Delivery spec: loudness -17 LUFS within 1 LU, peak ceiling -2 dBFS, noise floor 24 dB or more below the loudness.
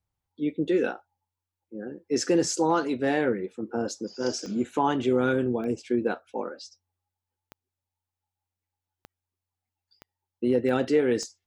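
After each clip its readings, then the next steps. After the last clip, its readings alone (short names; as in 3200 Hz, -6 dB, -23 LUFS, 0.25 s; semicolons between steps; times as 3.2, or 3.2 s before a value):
clicks 7; loudness -27.0 LUFS; peak -12.0 dBFS; loudness target -17.0 LUFS
-> de-click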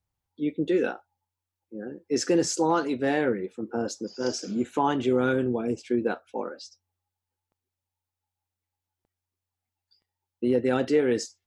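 clicks 0; loudness -26.5 LUFS; peak -12.0 dBFS; loudness target -17.0 LUFS
-> gain +9.5 dB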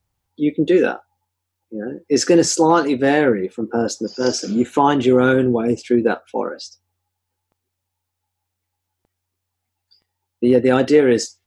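loudness -17.0 LUFS; peak -2.5 dBFS; noise floor -79 dBFS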